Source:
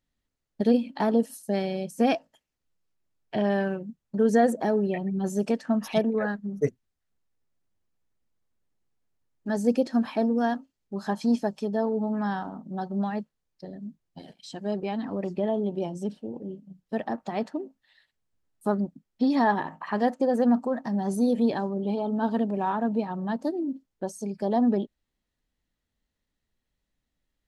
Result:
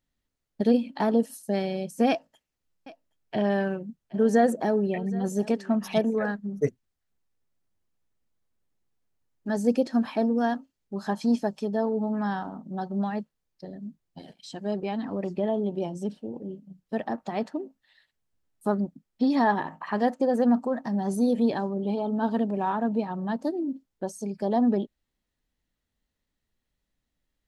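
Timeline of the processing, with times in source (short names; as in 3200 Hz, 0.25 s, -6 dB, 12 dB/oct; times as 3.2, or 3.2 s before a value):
2.09–6.34 echo 0.772 s -20 dB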